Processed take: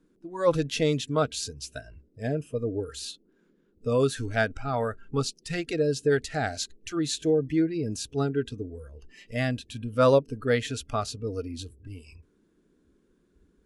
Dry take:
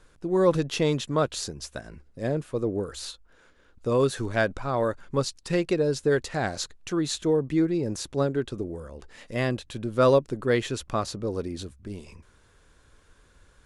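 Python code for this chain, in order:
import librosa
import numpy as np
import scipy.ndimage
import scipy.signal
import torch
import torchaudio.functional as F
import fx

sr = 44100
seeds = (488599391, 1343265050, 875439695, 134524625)

y = fx.dmg_noise_band(x, sr, seeds[0], low_hz=160.0, high_hz=420.0, level_db=-50.0)
y = fx.noise_reduce_blind(y, sr, reduce_db=17)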